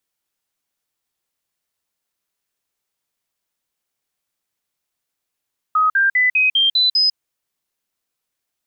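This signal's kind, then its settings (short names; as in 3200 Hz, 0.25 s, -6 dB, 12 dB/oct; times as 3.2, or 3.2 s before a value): stepped sine 1260 Hz up, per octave 3, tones 7, 0.15 s, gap 0.05 s -12 dBFS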